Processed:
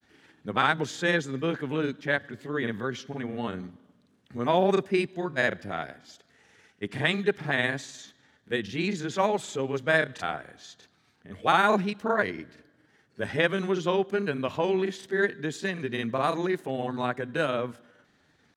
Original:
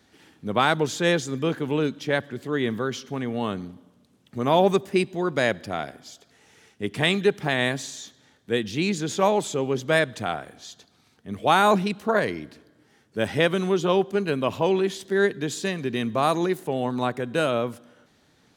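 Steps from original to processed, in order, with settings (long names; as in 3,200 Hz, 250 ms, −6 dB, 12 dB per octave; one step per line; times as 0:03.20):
parametric band 1,700 Hz +6 dB 0.72 octaves
granular cloud, spray 30 ms, pitch spread up and down by 0 semitones
high-shelf EQ 8,700 Hz −6.5 dB
level −3.5 dB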